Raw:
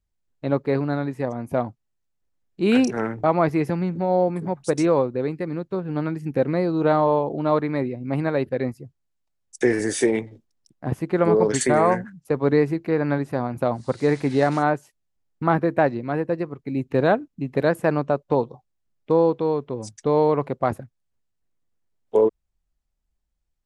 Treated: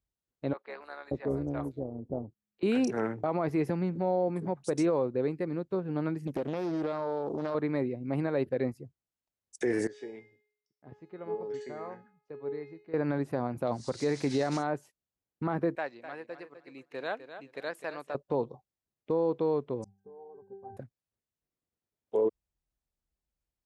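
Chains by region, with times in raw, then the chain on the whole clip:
0.53–2.63 s: peaking EQ 770 Hz -3.5 dB 0.69 oct + three bands offset in time mids, highs, lows 170/580 ms, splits 640/4800 Hz + AM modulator 210 Hz, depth 40%
6.27–7.55 s: tone controls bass -1 dB, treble +11 dB + compression 12:1, threshold -22 dBFS + loudspeaker Doppler distortion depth 0.61 ms
9.87–12.94 s: low-pass 5.1 kHz 24 dB/octave + feedback comb 420 Hz, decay 0.64 s, mix 90%
13.67–14.67 s: peaking EQ 5.7 kHz +12 dB 1.3 oct + tape noise reduction on one side only encoder only
15.75–18.15 s: band-pass filter 4.2 kHz, Q 0.54 + feedback delay 254 ms, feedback 21%, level -11 dB
19.84–20.77 s: Chebyshev band-stop 1.5–4.8 kHz, order 4 + pitch-class resonator G, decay 0.5 s
whole clip: high-pass 45 Hz; peaking EQ 430 Hz +3.5 dB 1.6 oct; peak limiter -12 dBFS; trim -7.5 dB

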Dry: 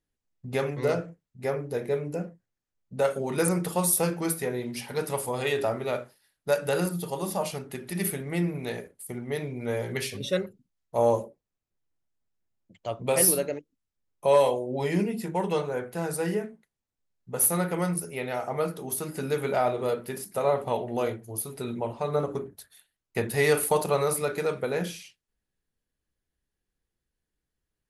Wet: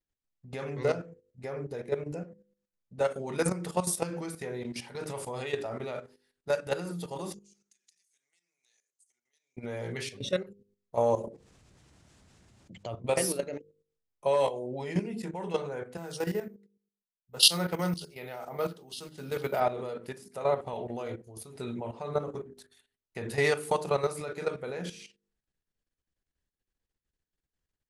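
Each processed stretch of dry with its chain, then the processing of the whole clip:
7.34–9.57 s: tilt EQ +2 dB/octave + compression 8:1, threshold -44 dBFS + band-pass filter 6.5 kHz, Q 4.6
11.24–12.95 s: high-pass 61 Hz + bass shelf 190 Hz +9 dB + level flattener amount 50%
15.97–19.60 s: careless resampling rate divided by 3×, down none, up zero stuff + three bands expanded up and down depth 100%
whole clip: de-hum 50.38 Hz, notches 10; level held to a coarse grid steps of 12 dB; low-pass 8.9 kHz 24 dB/octave

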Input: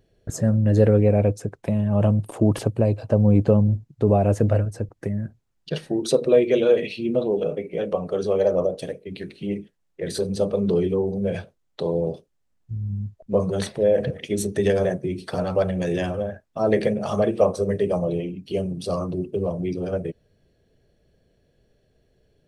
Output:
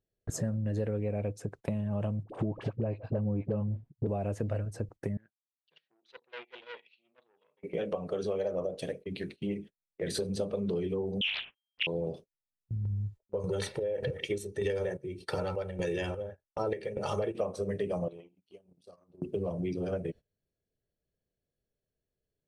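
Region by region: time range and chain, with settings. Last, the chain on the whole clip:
2.23–4.07 s: low-pass 2.5 kHz + phase dispersion highs, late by 56 ms, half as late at 690 Hz
5.17–7.63 s: valve stage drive 20 dB, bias 0.7 + band-pass filter 3.1 kHz, Q 1.4 + distance through air 180 m
11.21–11.87 s: zero-crossing glitches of -31 dBFS + frequency inversion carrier 3.2 kHz + loudspeaker Doppler distortion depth 0.99 ms
12.85–17.35 s: gate with hold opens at -35 dBFS, closes at -45 dBFS + square tremolo 1.7 Hz, depth 65%, duty 60% + comb 2.2 ms, depth 62%
18.08–19.22 s: transient shaper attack +5 dB, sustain -12 dB + bass shelf 240 Hz -11.5 dB + compression 12:1, threshold -38 dBFS
whole clip: gate -39 dBFS, range -21 dB; dynamic bell 2.4 kHz, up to +4 dB, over -42 dBFS, Q 1.2; compression 5:1, threshold -26 dBFS; trim -3.5 dB

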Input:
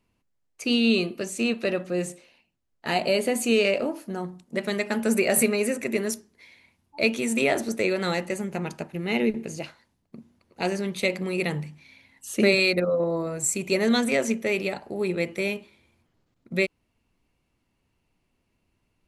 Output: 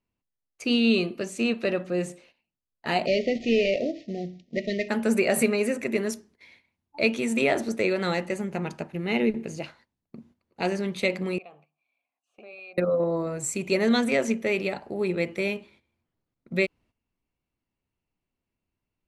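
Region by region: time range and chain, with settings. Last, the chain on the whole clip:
3.06–4.89 s: CVSD coder 32 kbps + brick-wall FIR band-stop 740–1800 Hz
11.38–12.78 s: compression 3:1, threshold -30 dBFS + vowel filter a
whole clip: treble shelf 8 kHz -11.5 dB; gate -55 dBFS, range -12 dB

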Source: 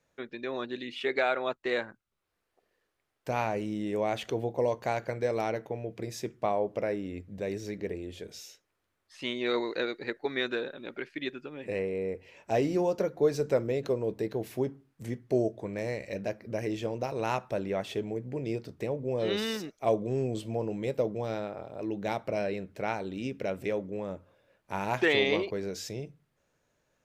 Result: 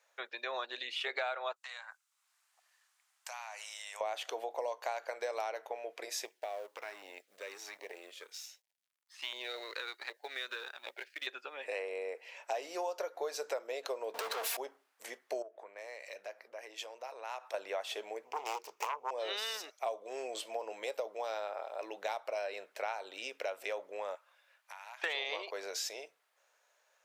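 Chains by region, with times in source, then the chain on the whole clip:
1.56–4.01 s: high-pass 820 Hz 24 dB/octave + peaking EQ 7.5 kHz +10.5 dB 1.2 oct + compression 8:1, threshold -45 dBFS
6.25–11.27 s: companding laws mixed up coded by A + compression 4:1, threshold -34 dBFS + LFO notch saw down 1.3 Hz 420–1500 Hz
14.14–14.57 s: comb 4.3 ms, depth 67% + compression 5:1, threshold -37 dBFS + waveshaping leveller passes 5
15.42–17.54 s: compression 4:1, threshold -42 dBFS + three bands expanded up and down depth 100%
18.25–19.11 s: self-modulated delay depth 0.95 ms + rippled EQ curve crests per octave 0.76, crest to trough 9 dB
24.15–25.04 s: high-pass 1.1 kHz + compression 10:1, threshold -49 dBFS
whole clip: high-pass 630 Hz 24 dB/octave; dynamic bell 2 kHz, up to -4 dB, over -52 dBFS, Q 2.2; compression 5:1, threshold -39 dBFS; trim +5 dB

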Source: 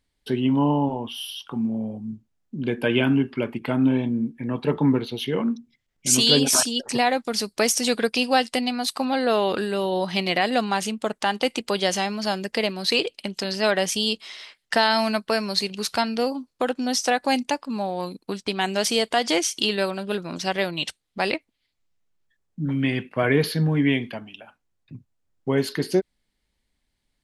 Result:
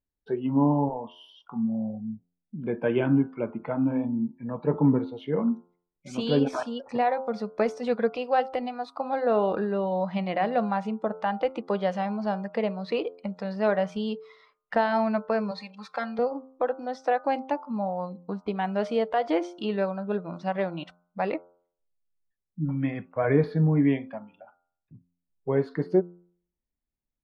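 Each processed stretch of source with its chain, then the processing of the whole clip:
15.51–16.19 s: high-pass 690 Hz 6 dB/octave + comb 3.8 ms, depth 95%
whole clip: spectral noise reduction 13 dB; Bessel low-pass 950 Hz, order 2; de-hum 87.79 Hz, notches 17

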